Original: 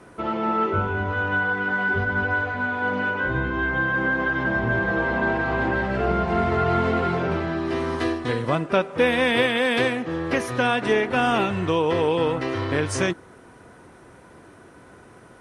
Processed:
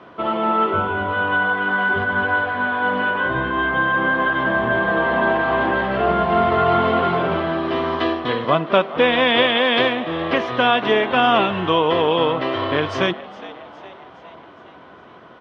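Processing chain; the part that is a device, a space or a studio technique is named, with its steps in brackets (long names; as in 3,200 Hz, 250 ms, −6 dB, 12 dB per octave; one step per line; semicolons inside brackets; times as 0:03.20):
frequency-shifting delay pedal into a guitar cabinet (echo with shifted repeats 412 ms, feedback 55%, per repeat +100 Hz, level −18 dB; loudspeaker in its box 89–4,300 Hz, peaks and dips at 110 Hz −8 dB, 660 Hz +6 dB, 1,100 Hz +8 dB, 3,200 Hz +9 dB)
level +2 dB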